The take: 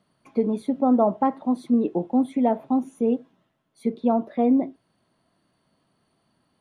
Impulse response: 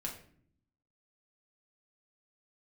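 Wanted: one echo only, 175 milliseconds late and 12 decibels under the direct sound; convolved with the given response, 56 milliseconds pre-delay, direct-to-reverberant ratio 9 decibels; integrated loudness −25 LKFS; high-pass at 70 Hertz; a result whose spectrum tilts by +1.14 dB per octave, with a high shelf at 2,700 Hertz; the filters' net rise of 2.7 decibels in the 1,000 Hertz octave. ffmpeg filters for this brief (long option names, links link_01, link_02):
-filter_complex "[0:a]highpass=70,equalizer=frequency=1000:width_type=o:gain=5,highshelf=frequency=2700:gain=-9,aecho=1:1:175:0.251,asplit=2[link_01][link_02];[1:a]atrim=start_sample=2205,adelay=56[link_03];[link_02][link_03]afir=irnorm=-1:irlink=0,volume=-9dB[link_04];[link_01][link_04]amix=inputs=2:normalize=0,volume=-3dB"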